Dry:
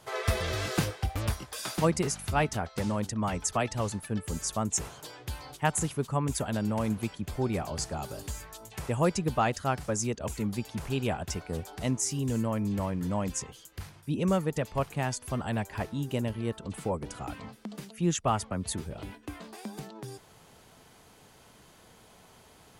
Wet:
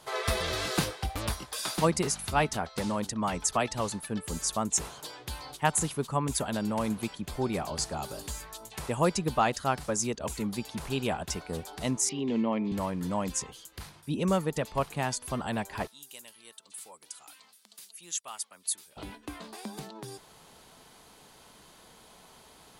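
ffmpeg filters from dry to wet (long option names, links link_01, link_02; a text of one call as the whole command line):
ffmpeg -i in.wav -filter_complex "[0:a]asettb=1/sr,asplit=3[link_01][link_02][link_03];[link_01]atrim=end=12.094[link_04];[link_02]atrim=start=12.09:end=12.72,asetpts=PTS-STARTPTS,afade=type=in:duration=0.004:curve=qsin,afade=type=out:start_time=0.626:duration=0.004:curve=qsin,highpass=210,equalizer=frequency=230:width_type=q:width=4:gain=6,equalizer=frequency=380:width_type=q:width=4:gain=6,equalizer=frequency=780:width_type=q:width=4:gain=3,equalizer=frequency=1500:width_type=q:width=4:gain=-9,equalizer=frequency=2200:width_type=q:width=4:gain=7,equalizer=frequency=3200:width_type=q:width=4:gain=3,lowpass=frequency=3800:width=0.5412,lowpass=frequency=3800:width=1.3066[link_05];[link_03]atrim=start=12.716[link_06];[link_04][link_05]acrossfade=duration=0.004:curve1=hsin:curve2=qsin[link_07];[link_07][link_06]acrossfade=duration=0.004:curve1=qsin:curve2=hsin,asettb=1/sr,asplit=3[link_08][link_09][link_10];[link_08]atrim=end=15.874[link_11];[link_09]atrim=start=15.87:end=18.97,asetpts=PTS-STARTPTS,afade=type=in:duration=0.004:curve=qsin,afade=type=out:start_time=3.096:duration=0.004:curve=qsin,aderivative[link_12];[link_10]atrim=start=18.966[link_13];[link_11][link_12]acrossfade=duration=0.004:curve1=hsin:curve2=qsin[link_14];[link_14][link_13]acrossfade=duration=0.004:curve1=qsin:curve2=hsin,equalizer=frequency=100:width_type=o:width=0.67:gain=-8,equalizer=frequency=1000:width_type=o:width=0.67:gain=3,equalizer=frequency=4000:width_type=o:width=0.67:gain=5,equalizer=frequency=10000:width_type=o:width=0.67:gain=4" out.wav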